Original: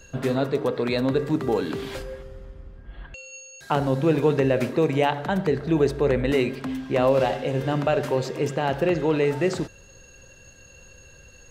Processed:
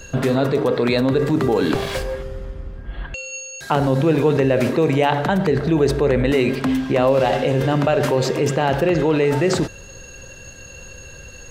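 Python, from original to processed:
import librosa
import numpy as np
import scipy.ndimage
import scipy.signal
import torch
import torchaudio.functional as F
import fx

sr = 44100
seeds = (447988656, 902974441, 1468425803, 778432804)

p1 = fx.lower_of_two(x, sr, delay_ms=1.8, at=(1.74, 2.15))
p2 = fx.over_compress(p1, sr, threshold_db=-28.0, ratio=-1.0)
p3 = p1 + (p2 * 10.0 ** (-0.5 / 20.0))
y = p3 * 10.0 ** (2.0 / 20.0)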